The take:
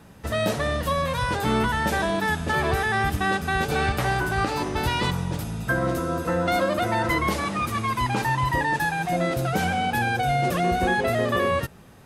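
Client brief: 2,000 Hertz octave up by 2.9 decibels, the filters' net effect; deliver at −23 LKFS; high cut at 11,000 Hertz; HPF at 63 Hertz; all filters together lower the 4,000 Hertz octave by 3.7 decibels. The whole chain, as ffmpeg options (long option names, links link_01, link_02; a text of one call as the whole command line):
ffmpeg -i in.wav -af "highpass=63,lowpass=11000,equalizer=frequency=2000:width_type=o:gain=5,equalizer=frequency=4000:width_type=o:gain=-7" out.wav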